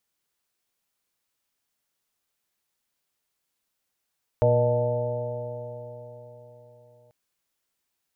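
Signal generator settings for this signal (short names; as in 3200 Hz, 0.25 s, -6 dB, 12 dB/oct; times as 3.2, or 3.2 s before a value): stretched partials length 2.69 s, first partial 118 Hz, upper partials -12.5/-16.5/-0.5/2/-18/-10 dB, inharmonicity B 0.0027, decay 4.13 s, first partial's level -21 dB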